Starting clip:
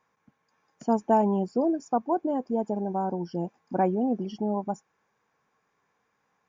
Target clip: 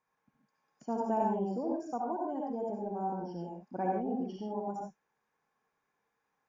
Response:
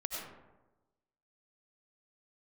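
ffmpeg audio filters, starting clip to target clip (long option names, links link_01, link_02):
-filter_complex "[1:a]atrim=start_sample=2205,afade=type=out:start_time=0.27:duration=0.01,atrim=end_sample=12348,asetrate=57330,aresample=44100[link_01];[0:a][link_01]afir=irnorm=-1:irlink=0,volume=-7dB"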